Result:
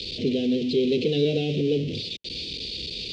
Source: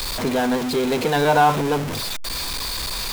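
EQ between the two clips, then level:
high-pass filter 100 Hz 12 dB per octave
elliptic band-stop filter 450–2,800 Hz, stop band 70 dB
low-pass filter 4,300 Hz 24 dB per octave
0.0 dB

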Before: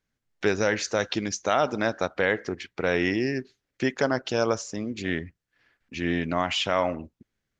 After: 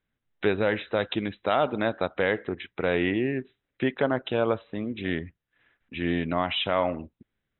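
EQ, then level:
dynamic equaliser 1,700 Hz, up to −3 dB, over −36 dBFS, Q 1.5
linear-phase brick-wall low-pass 4,000 Hz
0.0 dB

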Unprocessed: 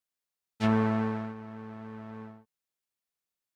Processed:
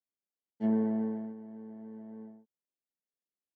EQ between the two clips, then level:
moving average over 35 samples
high-pass filter 200 Hz 24 dB per octave
low-shelf EQ 360 Hz +6.5 dB
−4.0 dB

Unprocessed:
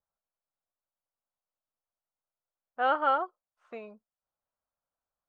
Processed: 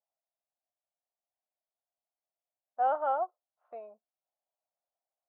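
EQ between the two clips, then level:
resonant band-pass 690 Hz, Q 4.5
+5.0 dB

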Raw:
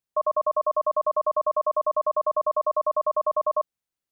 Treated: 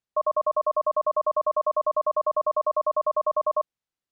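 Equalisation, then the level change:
high-frequency loss of the air 61 metres
0.0 dB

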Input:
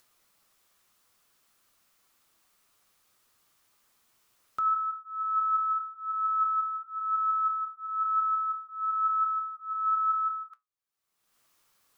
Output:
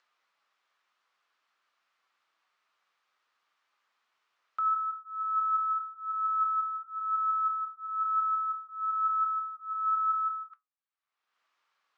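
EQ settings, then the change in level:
high-pass filter 1,300 Hz 12 dB per octave
high-frequency loss of the air 140 metres
spectral tilt −4 dB per octave
+4.0 dB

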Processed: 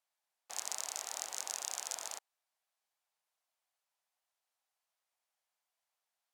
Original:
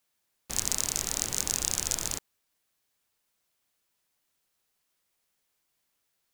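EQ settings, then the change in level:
resonant band-pass 730 Hz, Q 2.4
first difference
+17.5 dB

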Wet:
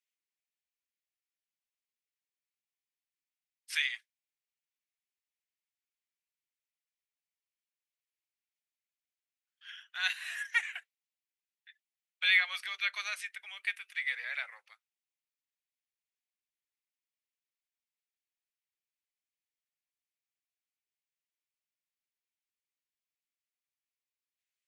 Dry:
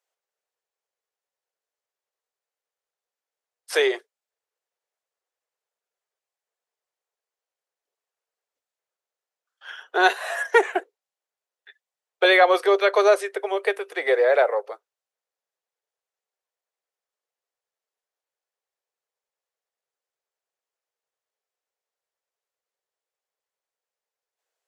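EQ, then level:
four-pole ladder high-pass 1,900 Hz, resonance 45%
0.0 dB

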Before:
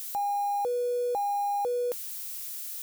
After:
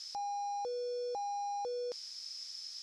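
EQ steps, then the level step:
transistor ladder low-pass 5,300 Hz, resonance 90%
notch filter 2,800 Hz, Q 17
+4.0 dB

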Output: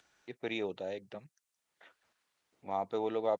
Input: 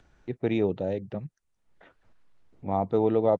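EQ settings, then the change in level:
high-pass filter 840 Hz 6 dB per octave
high-shelf EQ 2,900 Hz +9.5 dB
−3.5 dB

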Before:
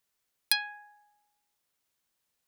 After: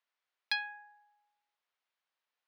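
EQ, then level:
high-pass filter 690 Hz 12 dB per octave
high-frequency loss of the air 240 metres
0.0 dB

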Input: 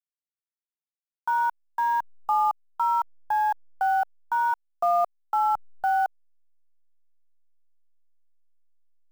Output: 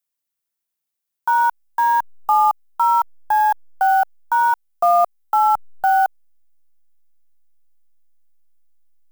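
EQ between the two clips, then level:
high-shelf EQ 9,200 Hz +10.5 dB
+7.5 dB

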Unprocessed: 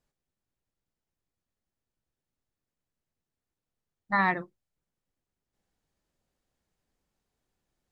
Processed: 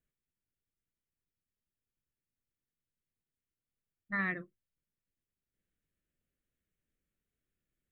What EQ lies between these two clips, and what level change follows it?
phaser with its sweep stopped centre 2,100 Hz, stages 4
−5.5 dB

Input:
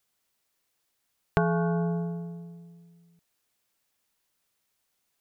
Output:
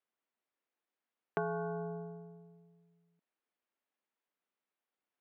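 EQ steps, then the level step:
high-pass filter 210 Hz 24 dB per octave
high-frequency loss of the air 440 metres
−7.0 dB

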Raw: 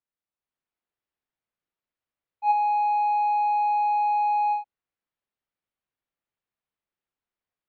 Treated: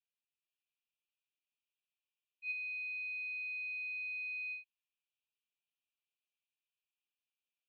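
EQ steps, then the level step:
linear-phase brick-wall high-pass 2,300 Hz
low-pass filter 3,200 Hz 24 dB per octave
+4.5 dB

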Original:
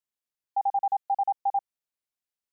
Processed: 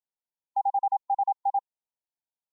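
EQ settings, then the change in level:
linear-phase brick-wall low-pass 1,000 Hz
spectral tilt +4.5 dB per octave
parametric band 490 Hz −8.5 dB 2.3 octaves
+8.0 dB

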